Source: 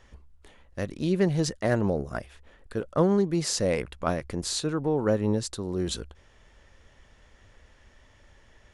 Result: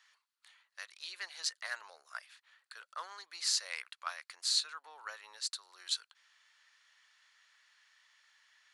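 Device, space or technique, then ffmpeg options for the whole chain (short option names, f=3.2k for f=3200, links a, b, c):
headphones lying on a table: -af "highpass=f=1.2k:w=0.5412,highpass=f=1.2k:w=1.3066,equalizer=f=4.3k:t=o:w=0.29:g=9,volume=-4.5dB"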